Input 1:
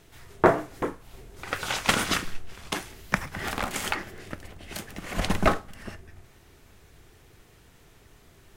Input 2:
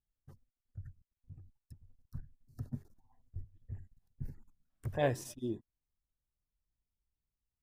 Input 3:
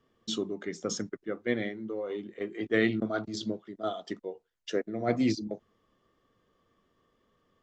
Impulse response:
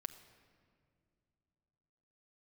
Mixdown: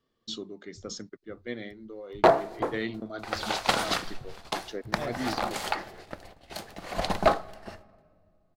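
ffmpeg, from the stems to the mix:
-filter_complex "[0:a]agate=range=0.0316:threshold=0.00794:ratio=16:detection=peak,equalizer=f=720:t=o:w=1.4:g=12,volume=1.41,asoftclip=hard,volume=0.708,adelay=1800,volume=0.299,asplit=2[s0][s1];[s1]volume=0.668[s2];[1:a]volume=0.501[s3];[2:a]volume=0.447[s4];[3:a]atrim=start_sample=2205[s5];[s2][s5]afir=irnorm=-1:irlink=0[s6];[s0][s3][s4][s6]amix=inputs=4:normalize=0,equalizer=f=4300:t=o:w=0.59:g=9.5"

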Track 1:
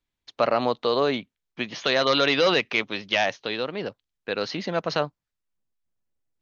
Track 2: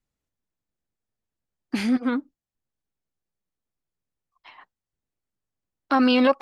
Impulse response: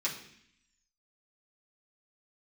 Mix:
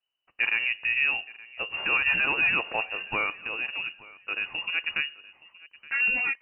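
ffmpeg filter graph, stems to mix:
-filter_complex "[0:a]lowshelf=f=410:g=7,bandreject=f=910:w=8,volume=0.501,asplit=3[s0][s1][s2];[s1]volume=0.141[s3];[s2]volume=0.0891[s4];[1:a]flanger=delay=15.5:depth=3.6:speed=0.52,volume=0.562,asplit=2[s5][s6];[s6]volume=0.355[s7];[2:a]atrim=start_sample=2205[s8];[s3][s8]afir=irnorm=-1:irlink=0[s9];[s4][s7]amix=inputs=2:normalize=0,aecho=0:1:871|1742|2613|3484:1|0.22|0.0484|0.0106[s10];[s0][s5][s9][s10]amix=inputs=4:normalize=0,lowpass=f=2600:t=q:w=0.5098,lowpass=f=2600:t=q:w=0.6013,lowpass=f=2600:t=q:w=0.9,lowpass=f=2600:t=q:w=2.563,afreqshift=-3000"

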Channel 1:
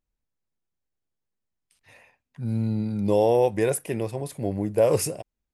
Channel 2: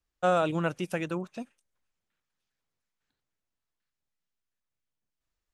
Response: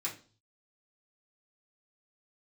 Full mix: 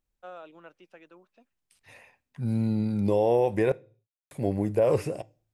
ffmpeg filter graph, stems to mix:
-filter_complex "[0:a]volume=1.06,asplit=3[s0][s1][s2];[s0]atrim=end=3.72,asetpts=PTS-STARTPTS,afade=t=out:st=3.716:d=0.004:c=hsin[s3];[s1]atrim=start=3.72:end=4.31,asetpts=PTS-STARTPTS,volume=0[s4];[s2]atrim=start=4.31,asetpts=PTS-STARTPTS,afade=t=in:d=0.004:c=hsin[s5];[s3][s4][s5]concat=n=3:v=0:a=1,asplit=2[s6][s7];[s7]volume=0.126[s8];[1:a]acrossover=split=260 5000:gain=0.0891 1 0.0891[s9][s10][s11];[s9][s10][s11]amix=inputs=3:normalize=0,volume=0.119[s12];[2:a]atrim=start_sample=2205[s13];[s8][s13]afir=irnorm=-1:irlink=0[s14];[s6][s12][s14]amix=inputs=3:normalize=0,acrossover=split=3000[s15][s16];[s16]acompressor=threshold=0.00355:ratio=4:attack=1:release=60[s17];[s15][s17]amix=inputs=2:normalize=0,alimiter=limit=0.211:level=0:latency=1:release=79"

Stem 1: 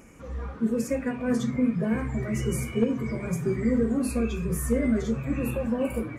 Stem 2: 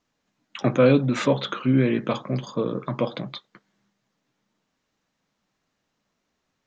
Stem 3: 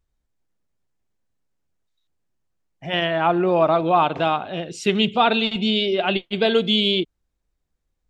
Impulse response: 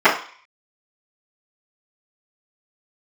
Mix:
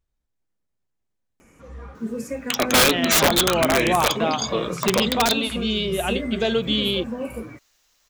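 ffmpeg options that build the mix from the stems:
-filter_complex "[0:a]lowshelf=f=320:g=-4,adelay=1400,volume=0.891[s0];[1:a]highpass=430,crystalizer=i=7:c=0,adelay=1950,volume=1.33[s1];[2:a]volume=0.668[s2];[s0][s1][s2]amix=inputs=3:normalize=0,aeval=exprs='(mod(2.99*val(0)+1,2)-1)/2.99':c=same"

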